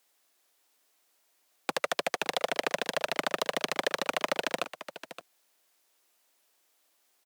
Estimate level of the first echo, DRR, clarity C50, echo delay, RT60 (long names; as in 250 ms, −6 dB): −13.5 dB, no reverb audible, no reverb audible, 569 ms, no reverb audible